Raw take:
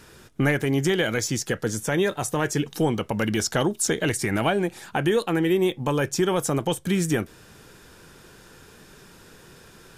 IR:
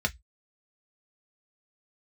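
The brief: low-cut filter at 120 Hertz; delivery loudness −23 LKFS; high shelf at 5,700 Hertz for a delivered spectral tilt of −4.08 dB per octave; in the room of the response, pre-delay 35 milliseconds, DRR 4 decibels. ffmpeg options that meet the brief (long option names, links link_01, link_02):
-filter_complex "[0:a]highpass=120,highshelf=frequency=5700:gain=6,asplit=2[link_01][link_02];[1:a]atrim=start_sample=2205,adelay=35[link_03];[link_02][link_03]afir=irnorm=-1:irlink=0,volume=-12dB[link_04];[link_01][link_04]amix=inputs=2:normalize=0,volume=-0.5dB"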